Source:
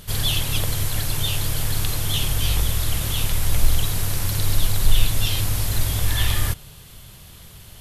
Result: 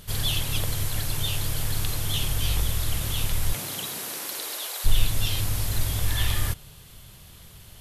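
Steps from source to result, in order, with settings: 3.52–4.84 HPF 130 Hz -> 520 Hz 24 dB/oct; gain -4 dB

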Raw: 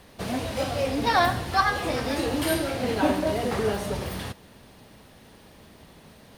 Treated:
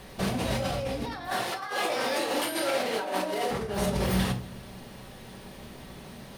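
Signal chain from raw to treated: 1.27–3.51 HPF 450 Hz 12 dB/oct; negative-ratio compressor -32 dBFS, ratio -1; shoebox room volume 370 m³, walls furnished, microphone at 1.1 m

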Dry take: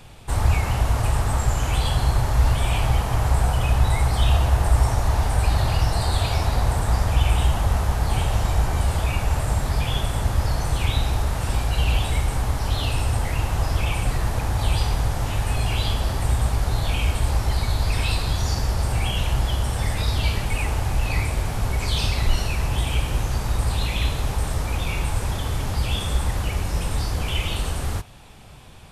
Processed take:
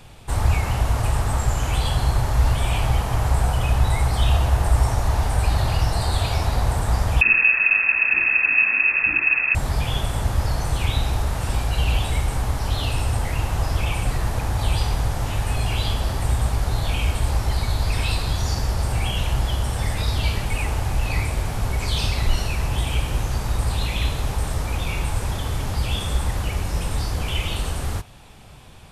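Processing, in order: 7.21–9.55 inverted band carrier 2600 Hz

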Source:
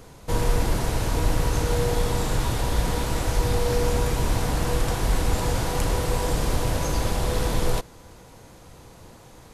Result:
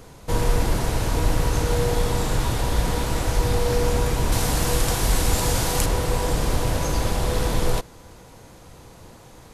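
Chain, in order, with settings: 4.32–5.86 high shelf 3500 Hz +8.5 dB; gain +1.5 dB

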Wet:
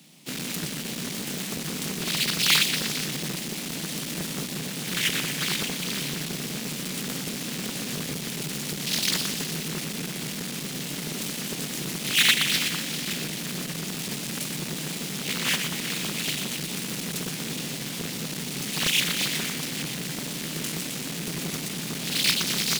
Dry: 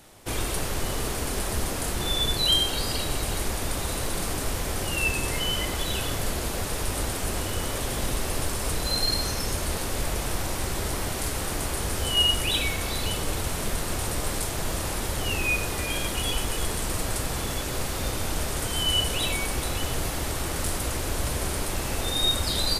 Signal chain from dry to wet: half-waves squared off; elliptic high-pass 150 Hz, stop band 40 dB; band shelf 780 Hz -16 dB 2.7 oct; split-band echo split 420 Hz, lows 0.177 s, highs 0.12 s, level -7 dB; Doppler distortion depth 0.99 ms

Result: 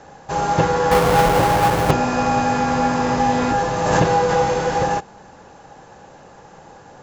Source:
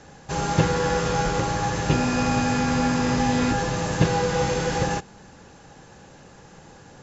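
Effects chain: 0.91–1.91 half-waves squared off; bell 770 Hz +10 dB 1.9 oct; 3.54–4.51 backwards sustainer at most 34 dB/s; gain -1.5 dB

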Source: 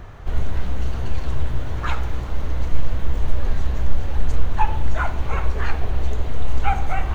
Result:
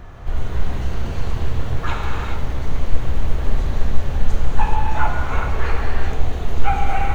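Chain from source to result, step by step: non-linear reverb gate 0.46 s flat, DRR -2 dB; gain -1 dB

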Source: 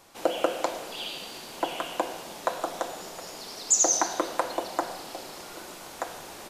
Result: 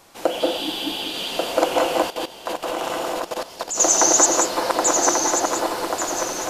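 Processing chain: regenerating reverse delay 0.569 s, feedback 61%, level 0 dB; 0.42–0.96 spectral repair 340–11000 Hz after; reverb RT60 0.35 s, pre-delay 0.173 s, DRR 1.5 dB; 2.1–3.8 level quantiser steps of 15 dB; gain +4.5 dB

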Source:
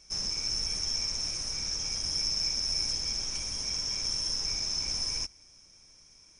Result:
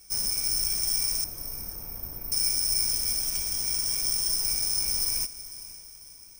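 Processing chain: 1.24–2.32 LPF 1100 Hz 12 dB/oct; on a send: diffused feedback echo 0.495 s, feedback 45%, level -15 dB; on the sum: careless resampling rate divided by 3×, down filtered, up zero stuff

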